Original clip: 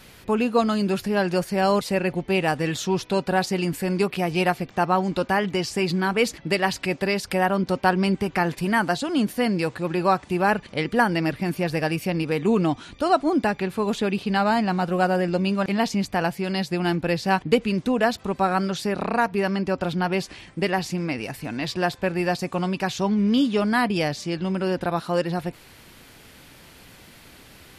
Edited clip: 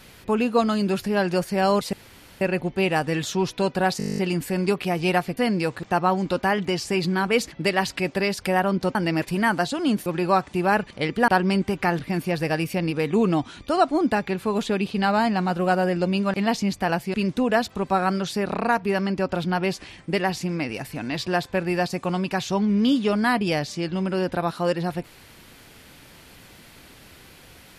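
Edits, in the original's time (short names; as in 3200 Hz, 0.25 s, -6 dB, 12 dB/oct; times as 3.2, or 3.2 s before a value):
1.93 insert room tone 0.48 s
3.5 stutter 0.02 s, 11 plays
7.81–8.52 swap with 11.04–11.31
9.36–9.82 move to 4.69
16.46–17.63 cut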